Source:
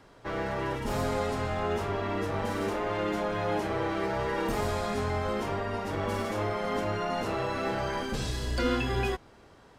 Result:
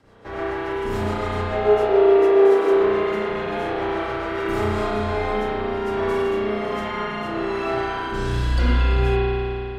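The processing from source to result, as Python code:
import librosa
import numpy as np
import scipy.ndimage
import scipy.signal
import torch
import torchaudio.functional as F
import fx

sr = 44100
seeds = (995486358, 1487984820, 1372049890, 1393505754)

y = fx.rotary_switch(x, sr, hz=7.0, then_hz=1.2, switch_at_s=4.25)
y = fx.highpass_res(y, sr, hz=410.0, q=4.9, at=(1.52, 2.73))
y = fx.rev_spring(y, sr, rt60_s=2.9, pass_ms=(33,), chirp_ms=25, drr_db=-9.0)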